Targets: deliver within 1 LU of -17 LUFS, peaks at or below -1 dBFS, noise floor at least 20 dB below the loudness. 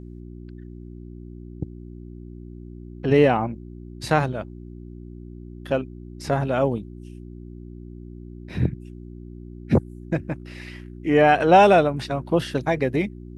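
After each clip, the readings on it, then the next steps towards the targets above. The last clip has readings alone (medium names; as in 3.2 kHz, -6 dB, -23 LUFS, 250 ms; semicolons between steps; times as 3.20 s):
hum 60 Hz; highest harmonic 360 Hz; hum level -36 dBFS; loudness -21.5 LUFS; peak level -2.5 dBFS; loudness target -17.0 LUFS
-> de-hum 60 Hz, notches 6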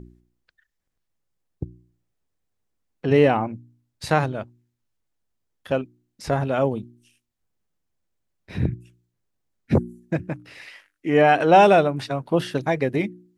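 hum not found; loudness -21.5 LUFS; peak level -2.5 dBFS; loudness target -17.0 LUFS
-> trim +4.5 dB; peak limiter -1 dBFS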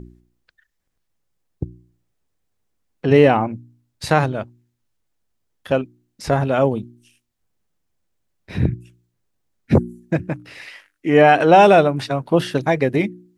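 loudness -17.5 LUFS; peak level -1.0 dBFS; noise floor -73 dBFS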